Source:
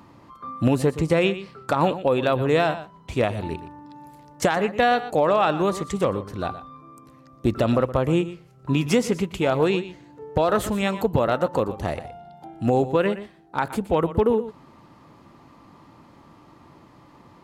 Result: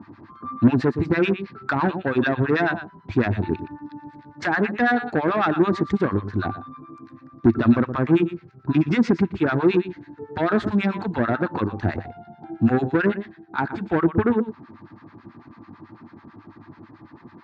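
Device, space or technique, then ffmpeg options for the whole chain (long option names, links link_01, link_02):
guitar amplifier with harmonic tremolo: -filter_complex "[0:a]acrossover=split=930[link_01][link_02];[link_01]aeval=exprs='val(0)*(1-1/2+1/2*cos(2*PI*9.1*n/s))':channel_layout=same[link_03];[link_02]aeval=exprs='val(0)*(1-1/2-1/2*cos(2*PI*9.1*n/s))':channel_layout=same[link_04];[link_03][link_04]amix=inputs=2:normalize=0,asoftclip=type=tanh:threshold=-21dB,highpass=77,equalizer=frequency=100:width_type=q:width=4:gain=9,equalizer=frequency=230:width_type=q:width=4:gain=8,equalizer=frequency=330:width_type=q:width=4:gain=8,equalizer=frequency=540:width_type=q:width=4:gain=-9,equalizer=frequency=1600:width_type=q:width=4:gain=9,equalizer=frequency=3000:width_type=q:width=4:gain=-8,lowpass=frequency=4200:width=0.5412,lowpass=frequency=4200:width=1.3066,volume=6dB"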